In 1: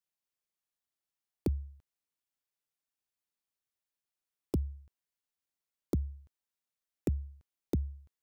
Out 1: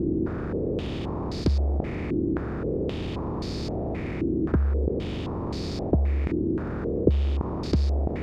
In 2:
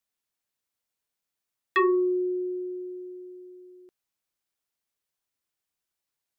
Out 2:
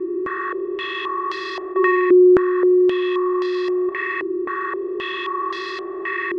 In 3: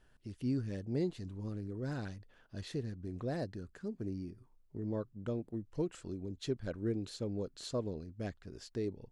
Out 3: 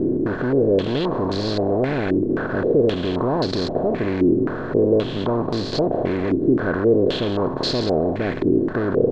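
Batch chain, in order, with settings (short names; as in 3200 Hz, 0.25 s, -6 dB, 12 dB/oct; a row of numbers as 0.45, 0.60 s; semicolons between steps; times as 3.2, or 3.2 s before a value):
per-bin compression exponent 0.2; power-law curve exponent 0.7; stepped low-pass 3.8 Hz 330–4600 Hz; normalise peaks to -6 dBFS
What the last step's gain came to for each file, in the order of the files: +3.5, 0.0, +3.0 dB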